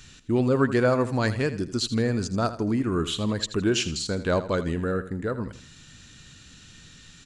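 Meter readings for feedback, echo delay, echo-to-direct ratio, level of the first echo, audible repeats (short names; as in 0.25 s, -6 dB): 35%, 81 ms, -13.0 dB, -13.5 dB, 3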